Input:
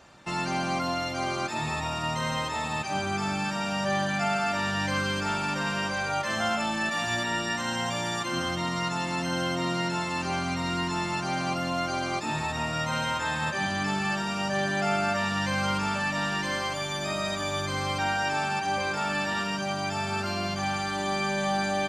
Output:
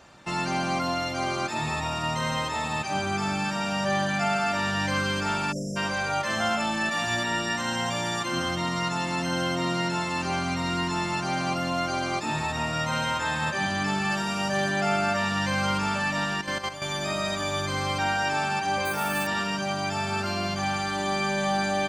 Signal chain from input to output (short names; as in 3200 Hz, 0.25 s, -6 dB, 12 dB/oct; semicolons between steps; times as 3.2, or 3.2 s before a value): 5.52–5.77 spectral delete 670–4800 Hz; 14.11–14.7 high shelf 11000 Hz +9 dB; 16.24–16.82 level quantiser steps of 10 dB; 18.85–19.27 careless resampling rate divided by 4×, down filtered, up hold; gain +1.5 dB